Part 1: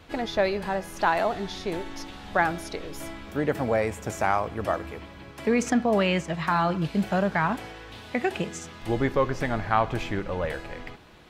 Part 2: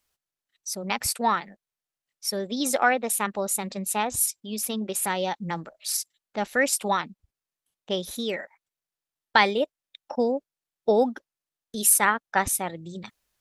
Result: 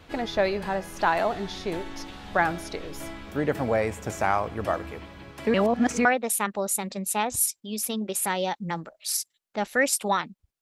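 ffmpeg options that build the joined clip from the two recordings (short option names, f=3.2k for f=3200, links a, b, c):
-filter_complex "[0:a]apad=whole_dur=10.61,atrim=end=10.61,asplit=2[a][b];[a]atrim=end=5.542[c];[b]atrim=start=5.538:end=6.052,asetpts=PTS-STARTPTS,areverse[d];[1:a]atrim=start=2.848:end=7.41[e];[c][d]acrossfade=d=0.004:c1=hsin:c2=hsin[f];[f][e]acrossfade=d=0.004:c1=hsin:c2=hsin"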